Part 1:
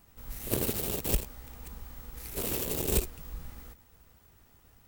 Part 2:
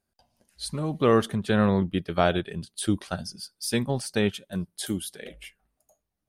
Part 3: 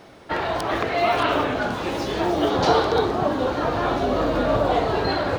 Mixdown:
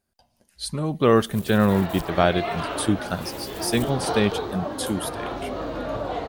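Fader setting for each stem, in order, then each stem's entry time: -10.0 dB, +3.0 dB, -8.5 dB; 0.85 s, 0.00 s, 1.40 s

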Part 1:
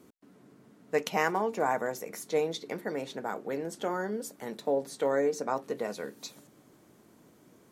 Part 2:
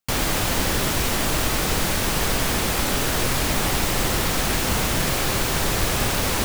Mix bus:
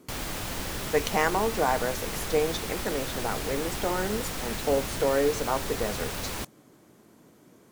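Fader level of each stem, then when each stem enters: +3.0 dB, -11.5 dB; 0.00 s, 0.00 s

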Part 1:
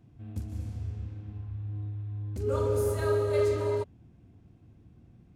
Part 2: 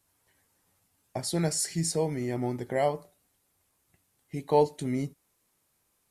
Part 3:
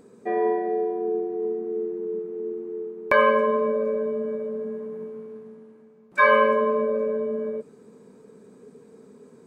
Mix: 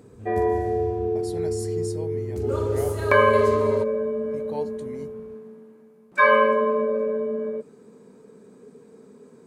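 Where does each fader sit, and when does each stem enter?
+2.0 dB, -10.0 dB, +0.5 dB; 0.00 s, 0.00 s, 0.00 s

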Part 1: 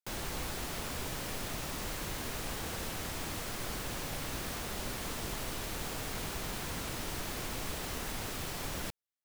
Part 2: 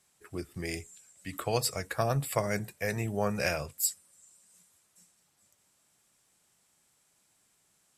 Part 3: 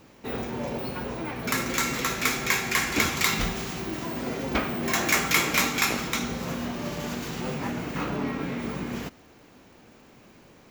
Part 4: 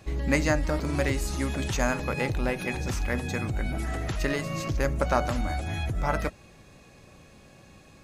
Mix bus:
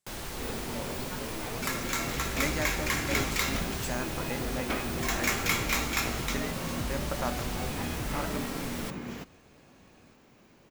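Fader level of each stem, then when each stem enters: 0.0 dB, -14.0 dB, -6.0 dB, -8.5 dB; 0.00 s, 0.00 s, 0.15 s, 2.10 s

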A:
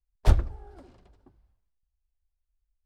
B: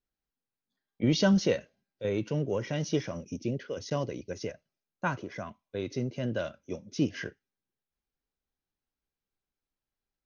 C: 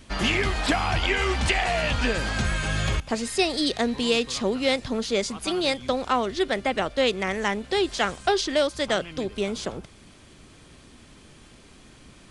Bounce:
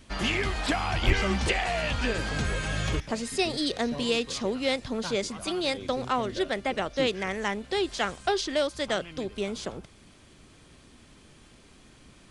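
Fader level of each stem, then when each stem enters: -6.0 dB, -8.0 dB, -4.0 dB; 0.80 s, 0.00 s, 0.00 s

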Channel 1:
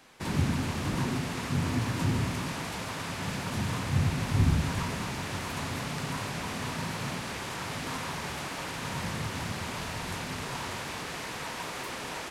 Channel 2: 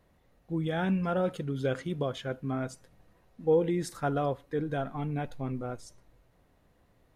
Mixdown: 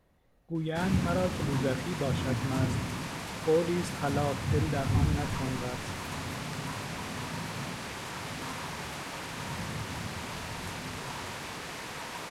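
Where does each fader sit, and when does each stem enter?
-2.5 dB, -1.5 dB; 0.55 s, 0.00 s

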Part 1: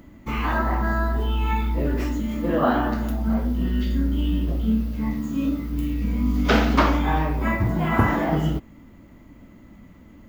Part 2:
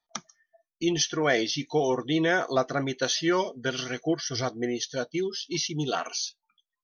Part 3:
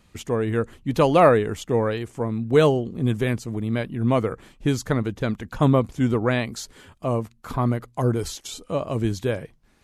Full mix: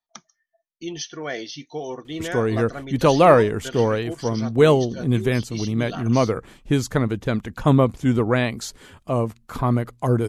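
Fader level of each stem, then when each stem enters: mute, -6.0 dB, +2.0 dB; mute, 0.00 s, 2.05 s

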